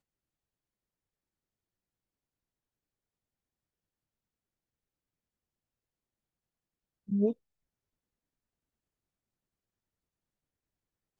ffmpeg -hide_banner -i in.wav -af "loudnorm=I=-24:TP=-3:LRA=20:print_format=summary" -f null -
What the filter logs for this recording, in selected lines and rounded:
Input Integrated:    -31.4 LUFS
Input True Peak:     -17.3 dBTP
Input LRA:             0.0 LU
Input Threshold:     -42.8 LUFS